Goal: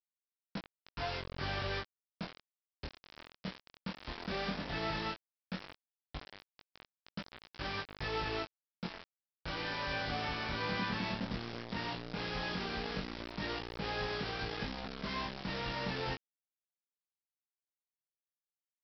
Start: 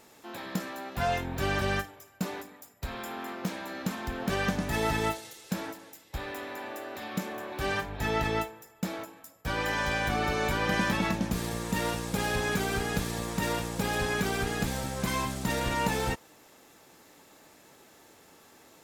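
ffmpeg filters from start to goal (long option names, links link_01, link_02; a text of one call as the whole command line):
ffmpeg -i in.wav -af "aresample=11025,acrusher=bits=4:mix=0:aa=0.000001,aresample=44100,flanger=delay=19:depth=7.3:speed=0.14,volume=-6.5dB" out.wav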